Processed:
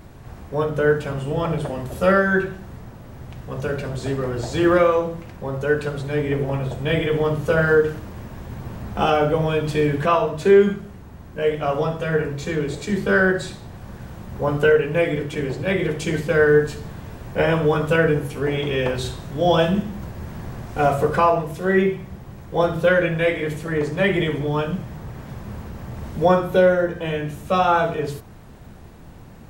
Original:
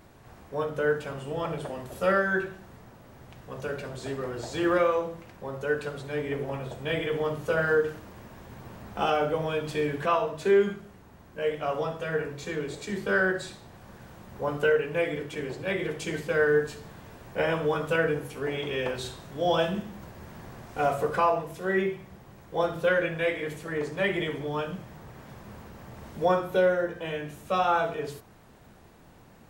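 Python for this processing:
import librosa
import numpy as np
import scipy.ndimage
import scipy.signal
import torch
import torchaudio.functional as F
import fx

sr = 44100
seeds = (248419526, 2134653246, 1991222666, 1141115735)

y = fx.low_shelf(x, sr, hz=200.0, db=10.0)
y = y * librosa.db_to_amplitude(6.0)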